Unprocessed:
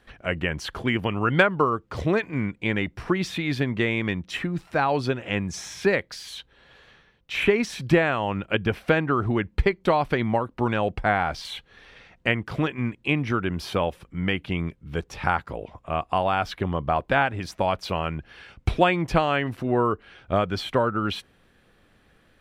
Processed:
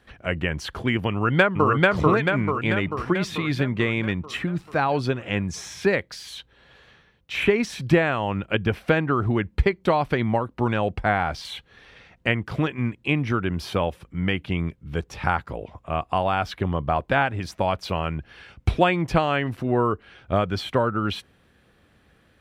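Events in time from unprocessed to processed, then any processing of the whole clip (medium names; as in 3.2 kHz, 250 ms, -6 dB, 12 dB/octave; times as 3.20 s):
1.11–1.70 s: echo throw 440 ms, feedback 60%, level -0.5 dB
whole clip: high-pass 57 Hz; bass shelf 100 Hz +7 dB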